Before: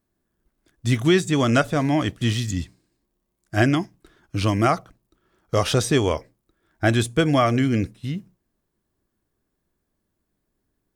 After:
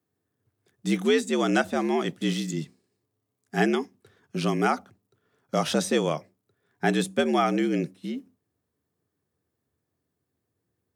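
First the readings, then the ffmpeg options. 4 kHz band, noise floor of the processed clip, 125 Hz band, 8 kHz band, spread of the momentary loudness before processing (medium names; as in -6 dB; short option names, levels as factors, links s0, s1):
-4.5 dB, -81 dBFS, -10.5 dB, -4.5 dB, 12 LU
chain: -af "afreqshift=72,volume=0.596"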